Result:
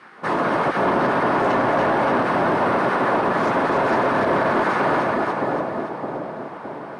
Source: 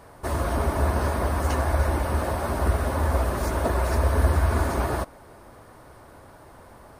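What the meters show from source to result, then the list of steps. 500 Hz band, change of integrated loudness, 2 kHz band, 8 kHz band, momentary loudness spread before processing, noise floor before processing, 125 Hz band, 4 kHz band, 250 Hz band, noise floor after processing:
+8.5 dB, +4.5 dB, +10.5 dB, can't be measured, 5 LU, −49 dBFS, −7.5 dB, +5.0 dB, +8.0 dB, −35 dBFS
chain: on a send: echo with a time of its own for lows and highs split 790 Hz, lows 614 ms, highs 285 ms, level −4 dB
on the sum: gate on every frequency bin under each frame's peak −10 dB weak
band-pass filter 160–2,600 Hz
harmonic generator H 5 −20 dB, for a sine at −14 dBFS
brickwall limiter −21.5 dBFS, peak gain reduction 7.5 dB
level +9 dB

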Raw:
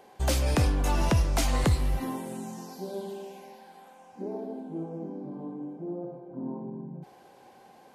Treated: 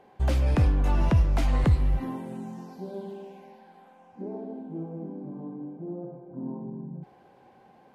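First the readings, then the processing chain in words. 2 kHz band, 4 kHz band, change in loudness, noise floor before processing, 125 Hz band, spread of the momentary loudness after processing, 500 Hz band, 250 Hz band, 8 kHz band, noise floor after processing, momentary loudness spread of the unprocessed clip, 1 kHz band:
−3.5 dB, −8.5 dB, +2.0 dB, −55 dBFS, +3.5 dB, 17 LU, −2.0 dB, +0.5 dB, below −10 dB, −57 dBFS, 16 LU, −2.5 dB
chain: bass and treble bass +6 dB, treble −13 dB
level −2.5 dB

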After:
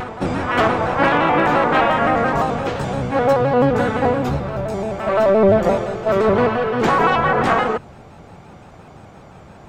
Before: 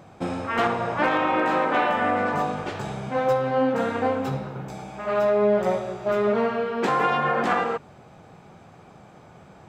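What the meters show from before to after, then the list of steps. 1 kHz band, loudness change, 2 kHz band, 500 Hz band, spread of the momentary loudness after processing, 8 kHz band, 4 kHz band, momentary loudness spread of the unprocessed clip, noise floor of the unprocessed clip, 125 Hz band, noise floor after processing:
+6.0 dB, +6.5 dB, +6.0 dB, +6.5 dB, 8 LU, can't be measured, +6.5 dB, 10 LU, −49 dBFS, +10.0 dB, −42 dBFS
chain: sub-octave generator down 1 octave, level −4 dB
backwards echo 637 ms −12 dB
pitch modulation by a square or saw wave square 5.8 Hz, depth 100 cents
level +6 dB

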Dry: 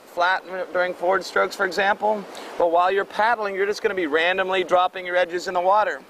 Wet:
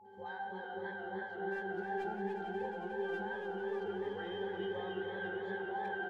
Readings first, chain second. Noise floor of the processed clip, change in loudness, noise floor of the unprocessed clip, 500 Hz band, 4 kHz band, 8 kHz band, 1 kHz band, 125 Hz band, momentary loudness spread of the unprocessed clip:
−45 dBFS, −18.5 dB, −44 dBFS, −17.5 dB, −21.5 dB, below −30 dB, −20.0 dB, can't be measured, 5 LU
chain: resonances in every octave G, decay 0.47 s
all-pass dispersion highs, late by 54 ms, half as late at 890 Hz
far-end echo of a speakerphone 100 ms, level −8 dB
reversed playback
downward compressor, threshold −44 dBFS, peak gain reduction 18 dB
reversed playback
steady tone 850 Hz −63 dBFS
on a send: echo that builds up and dies away 90 ms, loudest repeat 5, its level −11 dB
on the sum: feedback echo with a swinging delay time 295 ms, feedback 60%, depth 118 cents, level −7 dB
level +5.5 dB

